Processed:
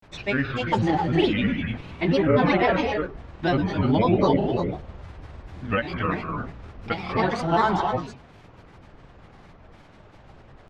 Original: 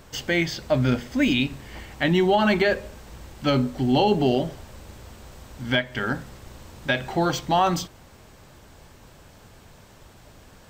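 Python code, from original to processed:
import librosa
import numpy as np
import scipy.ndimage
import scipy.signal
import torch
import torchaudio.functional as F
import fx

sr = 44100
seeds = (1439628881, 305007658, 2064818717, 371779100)

y = scipy.signal.sosfilt(scipy.signal.butter(2, 2500.0, 'lowpass', fs=sr, output='sos'), x)
y = fx.rev_gated(y, sr, seeds[0], gate_ms=340, shape='rising', drr_db=2.5)
y = fx.granulator(y, sr, seeds[1], grain_ms=100.0, per_s=20.0, spray_ms=35.0, spread_st=7)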